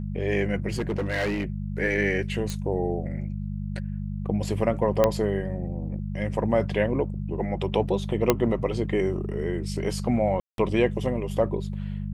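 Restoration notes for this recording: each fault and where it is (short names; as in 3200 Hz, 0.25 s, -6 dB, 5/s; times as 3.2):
hum 50 Hz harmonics 4 -31 dBFS
0.69–1.44 clipped -22.5 dBFS
2.5 pop
5.04 pop -7 dBFS
8.3 pop -4 dBFS
10.4–10.58 gap 0.182 s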